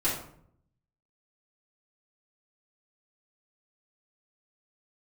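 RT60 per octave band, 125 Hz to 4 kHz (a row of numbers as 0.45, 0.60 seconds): 1.0, 0.85, 0.70, 0.60, 0.50, 0.35 seconds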